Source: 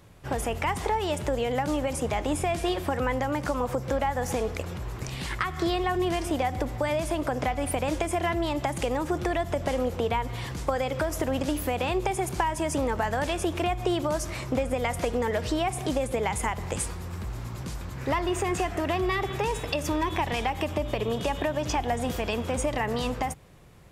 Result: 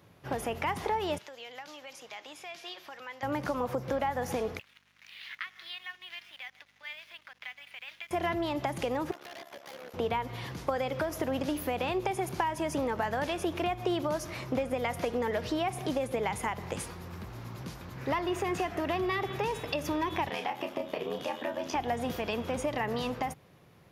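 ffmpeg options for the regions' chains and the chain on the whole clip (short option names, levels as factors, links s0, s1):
-filter_complex "[0:a]asettb=1/sr,asplit=3[s0][s1][s2];[s0]atrim=end=1.184[s3];[s1]atrim=start=1.18:end=3.23,asetpts=PTS-STARTPTS,afade=t=in:d=0.004:c=qsin,afade=t=out:st=2.046:d=0.004:c=qsin,bandpass=f=5900:t=q:w=0.61,equalizer=f=9600:t=o:w=0.6:g=-11.5[s4];[s2]atrim=start=3.226[s5];[s3][s4]acrossfade=d=0.004:c1=hsin:c2=qsin[s6];[s6][s5]acrossfade=d=0.004:c1=qsin:c2=hsin,asettb=1/sr,asplit=3[s7][s8][s9];[s7]atrim=end=4.594[s10];[s8]atrim=start=4.59:end=8.11,asetpts=PTS-STARTPTS,afade=t=in:d=0.004:c=qsin,afade=t=out:st=3.516:d=0.004:c=qsin,asuperpass=centerf=2700:order=4:qfactor=1.2,aeval=exprs='sgn(val(0))*max(abs(val(0))-0.00211,0)':c=same,aeval=exprs='val(0)+0.000501*(sin(2*PI*50*n/s)+sin(2*PI*2*50*n/s)/2+sin(2*PI*3*50*n/s)/3+sin(2*PI*4*50*n/s)/4+sin(2*PI*5*50*n/s)/5)':c=same[s11];[s9]atrim=start=8.106[s12];[s10][s11]acrossfade=d=0.004:c1=hsin:c2=qsin[s13];[s13][s12]acrossfade=d=0.004:c1=qsin:c2=hsin,asettb=1/sr,asplit=3[s14][s15][s16];[s14]atrim=end=9.114[s17];[s15]atrim=start=9.11:end=9.94,asetpts=PTS-STARTPTS,afade=t=in:d=0.004:c=qsin,afade=t=out:st=0.826:d=0.004:c=qsin,highpass=710,tremolo=f=69:d=0.889,aeval=exprs='0.0178*(abs(mod(val(0)/0.0178+3,4)-2)-1)':c=same[s18];[s16]atrim=start=9.936[s19];[s17][s18]acrossfade=d=0.004:c1=hsin:c2=qsin[s20];[s20][s19]acrossfade=d=0.004:c1=qsin:c2=hsin,asettb=1/sr,asplit=3[s21][s22][s23];[s21]atrim=end=20.294[s24];[s22]atrim=start=20.29:end=21.74,asetpts=PTS-STARTPTS,afade=t=in:d=0.004:c=qsin,afade=t=out:st=1.446:d=0.004:c=qsin,highpass=230,aeval=exprs='val(0)*sin(2*PI*42*n/s)':c=same,asplit=2[s25][s26];[s26]adelay=31,volume=0.447[s27];[s25][s27]amix=inputs=2:normalize=0,atrim=end_sample=63945[s28];[s23]atrim=start=21.736[s29];[s24][s28]acrossfade=d=0.004:c1=hsin:c2=qsin[s30];[s30][s29]acrossfade=d=0.004:c1=qsin:c2=hsin,highpass=110,equalizer=f=8000:t=o:w=0.41:g=-11.5,volume=0.668"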